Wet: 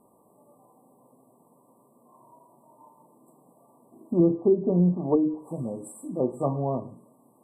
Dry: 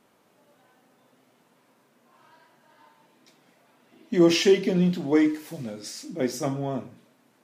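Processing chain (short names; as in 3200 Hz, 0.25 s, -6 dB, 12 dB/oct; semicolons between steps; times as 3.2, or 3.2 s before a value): treble ducked by the level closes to 370 Hz, closed at -16 dBFS; FFT band-reject 1200–7600 Hz; dynamic EQ 270 Hz, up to -6 dB, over -35 dBFS, Q 1.5; gain +3.5 dB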